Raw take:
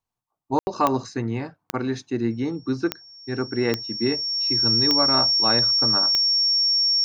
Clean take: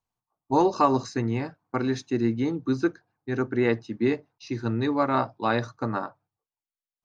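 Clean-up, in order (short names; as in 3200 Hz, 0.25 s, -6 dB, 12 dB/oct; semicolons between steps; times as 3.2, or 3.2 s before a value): de-click; notch 5500 Hz, Q 30; room tone fill 0.59–0.67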